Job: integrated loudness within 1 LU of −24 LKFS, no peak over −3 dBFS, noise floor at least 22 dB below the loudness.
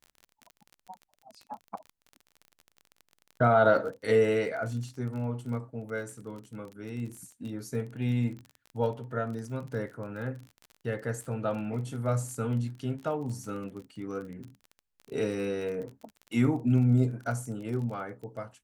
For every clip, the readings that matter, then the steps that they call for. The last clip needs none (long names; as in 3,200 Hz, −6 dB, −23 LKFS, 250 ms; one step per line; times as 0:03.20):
crackle rate 28 per second; integrated loudness −30.5 LKFS; sample peak −11.0 dBFS; target loudness −24.0 LKFS
→ click removal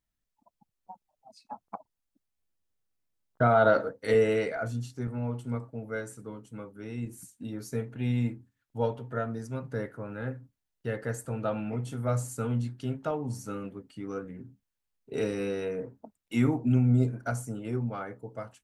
crackle rate 0 per second; integrated loudness −30.5 LKFS; sample peak −11.0 dBFS; target loudness −24.0 LKFS
→ level +6.5 dB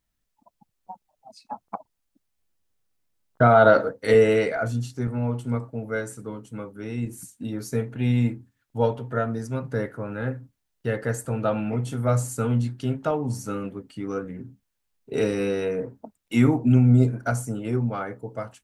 integrated loudness −24.0 LKFS; sample peak −4.5 dBFS; background noise floor −78 dBFS